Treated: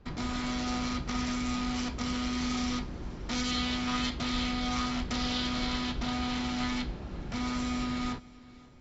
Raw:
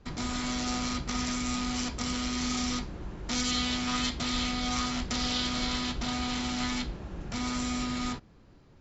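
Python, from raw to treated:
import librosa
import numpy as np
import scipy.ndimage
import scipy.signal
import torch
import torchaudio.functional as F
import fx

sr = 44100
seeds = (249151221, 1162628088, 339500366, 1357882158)

p1 = fx.air_absorb(x, sr, metres=100.0)
y = p1 + fx.echo_feedback(p1, sr, ms=528, feedback_pct=44, wet_db=-22, dry=0)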